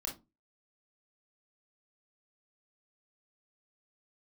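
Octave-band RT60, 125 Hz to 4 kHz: 0.35 s, 0.35 s, 0.25 s, 0.20 s, 0.15 s, 0.15 s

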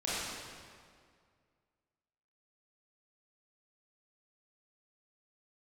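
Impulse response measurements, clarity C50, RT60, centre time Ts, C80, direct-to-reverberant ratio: -4.5 dB, 2.1 s, 144 ms, -2.0 dB, -10.0 dB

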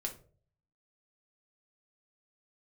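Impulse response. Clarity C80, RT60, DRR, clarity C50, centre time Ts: 17.5 dB, 0.45 s, 1.0 dB, 11.5 dB, 11 ms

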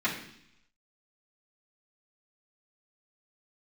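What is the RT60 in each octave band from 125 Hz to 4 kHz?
0.90 s, 0.85 s, 0.70 s, 0.70 s, 0.85 s, 0.90 s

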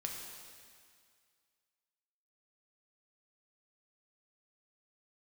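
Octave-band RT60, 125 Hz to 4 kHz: 2.0 s, 2.0 s, 2.0 s, 2.1 s, 2.1 s, 2.1 s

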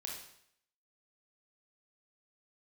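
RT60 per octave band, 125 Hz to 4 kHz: 0.65 s, 0.65 s, 0.70 s, 0.70 s, 0.70 s, 0.65 s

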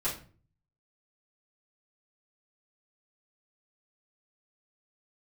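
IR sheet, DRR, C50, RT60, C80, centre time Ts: -10.0 dB, 8.0 dB, 0.40 s, 13.5 dB, 24 ms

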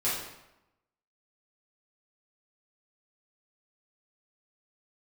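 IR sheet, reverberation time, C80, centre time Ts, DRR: 0.90 s, 5.0 dB, 58 ms, -10.0 dB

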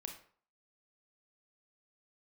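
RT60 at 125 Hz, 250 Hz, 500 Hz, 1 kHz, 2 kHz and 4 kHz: 0.45 s, 0.45 s, 0.50 s, 0.50 s, 0.40 s, 0.35 s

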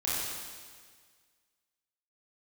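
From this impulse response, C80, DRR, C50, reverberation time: -0.5 dB, -9.0 dB, -2.5 dB, 1.7 s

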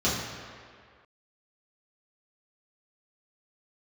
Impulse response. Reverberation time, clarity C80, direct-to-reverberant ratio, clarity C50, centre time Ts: 2.0 s, 3.5 dB, -9.0 dB, 1.0 dB, 88 ms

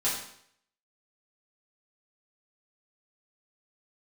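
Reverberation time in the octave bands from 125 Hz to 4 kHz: 0.65 s, 0.60 s, 0.65 s, 0.65 s, 0.65 s, 0.65 s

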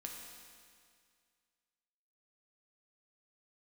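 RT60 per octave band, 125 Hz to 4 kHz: 2.1 s, 2.1 s, 2.1 s, 2.1 s, 2.1 s, 2.1 s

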